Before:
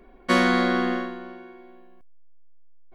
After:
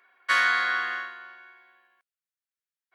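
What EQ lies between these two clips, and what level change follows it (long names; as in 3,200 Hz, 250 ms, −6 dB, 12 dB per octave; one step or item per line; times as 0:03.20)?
high-pass with resonance 1,500 Hz, resonance Q 2.3
−2.5 dB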